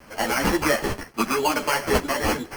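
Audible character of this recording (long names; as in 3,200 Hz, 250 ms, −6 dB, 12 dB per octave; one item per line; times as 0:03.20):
aliases and images of a low sample rate 3,700 Hz, jitter 0%
tremolo saw up 0.97 Hz, depth 35%
a quantiser's noise floor 8 bits, dither none
a shimmering, thickened sound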